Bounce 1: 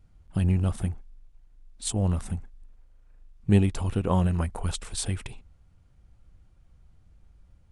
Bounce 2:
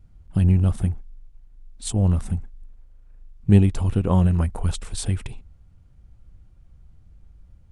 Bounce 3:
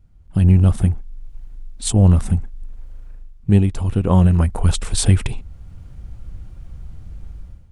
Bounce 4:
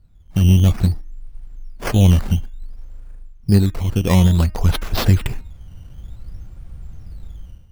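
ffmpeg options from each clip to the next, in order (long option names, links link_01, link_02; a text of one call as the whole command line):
ffmpeg -i in.wav -af "lowshelf=frequency=320:gain=7" out.wav
ffmpeg -i in.wav -af "dynaudnorm=framelen=110:gausssize=7:maxgain=16dB,volume=-1dB" out.wav
ffmpeg -i in.wav -af "acrusher=samples=10:mix=1:aa=0.000001:lfo=1:lforange=10:lforate=0.56,bandreject=frequency=309.3:width_type=h:width=4,bandreject=frequency=618.6:width_type=h:width=4,bandreject=frequency=927.9:width_type=h:width=4,bandreject=frequency=1237.2:width_type=h:width=4,bandreject=frequency=1546.5:width_type=h:width=4,bandreject=frequency=1855.8:width_type=h:width=4,bandreject=frequency=2165.1:width_type=h:width=4,bandreject=frequency=2474.4:width_type=h:width=4,bandreject=frequency=2783.7:width_type=h:width=4" out.wav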